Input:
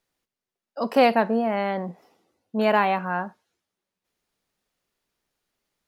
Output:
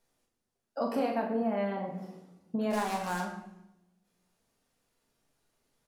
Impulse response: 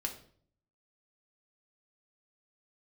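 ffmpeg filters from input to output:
-filter_complex "[0:a]equalizer=f=2.6k:w=0.56:g=-5.5,acompressor=threshold=-35dB:ratio=5,asplit=3[a][b][c];[a]afade=t=out:st=2.7:d=0.02[d];[b]acrusher=bits=2:mode=log:mix=0:aa=0.000001,afade=t=in:st=2.7:d=0.02,afade=t=out:st=3.21:d=0.02[e];[c]afade=t=in:st=3.21:d=0.02[f];[d][e][f]amix=inputs=3:normalize=0,asplit=2[g][h];[h]adelay=40,volume=-7.5dB[i];[g][i]amix=inputs=2:normalize=0[j];[1:a]atrim=start_sample=2205,asetrate=24255,aresample=44100[k];[j][k]afir=irnorm=-1:irlink=0"

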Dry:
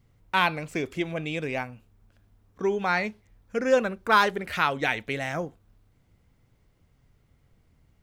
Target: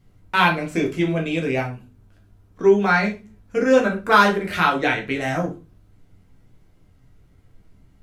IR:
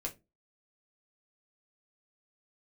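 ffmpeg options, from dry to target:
-filter_complex "[0:a]asettb=1/sr,asplit=3[a][b][c];[a]atrim=end=4.814[d];[b]atrim=start=4.81:end=5.21,asetpts=PTS-STARTPTS,afade=t=in:d=0.004:c=qsin,afade=t=out:st=0.396:d=0.004:c=qsin,highshelf=f=8.1k:g=-10[e];[c]atrim=start=5.206[f];[d][e]acrossfade=d=0.004:c1=hsin:c2=qsin[g];[g][f]acrossfade=d=0.004:c1=qsin:c2=hsin[h];[1:a]atrim=start_sample=2205,asetrate=27342,aresample=44100[i];[h][i]afir=irnorm=-1:irlink=0,volume=3dB"

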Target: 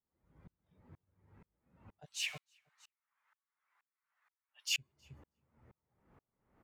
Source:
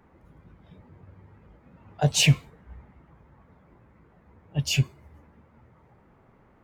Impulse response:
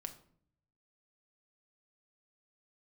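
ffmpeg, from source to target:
-filter_complex "[0:a]asplit=3[a][b][c];[a]afade=t=out:st=2.04:d=0.02[d];[b]highpass=f=1.2k:w=0.5412,highpass=f=1.2k:w=1.3066,afade=t=in:st=2.04:d=0.02,afade=t=out:st=4.77:d=0.02[e];[c]afade=t=in:st=4.77:d=0.02[f];[d][e][f]amix=inputs=3:normalize=0,aecho=1:1:318|636:0.0891|0.0152,aeval=exprs='val(0)*pow(10,-38*if(lt(mod(-2.1*n/s,1),2*abs(-2.1)/1000),1-mod(-2.1*n/s,1)/(2*abs(-2.1)/1000),(mod(-2.1*n/s,1)-2*abs(-2.1)/1000)/(1-2*abs(-2.1)/1000))/20)':c=same,volume=-3.5dB"

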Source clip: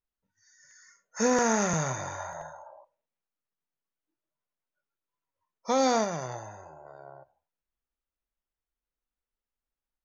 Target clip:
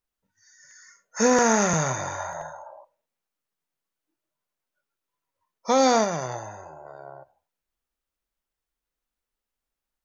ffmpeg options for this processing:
-af "lowshelf=f=160:g=-3,volume=5.5dB"

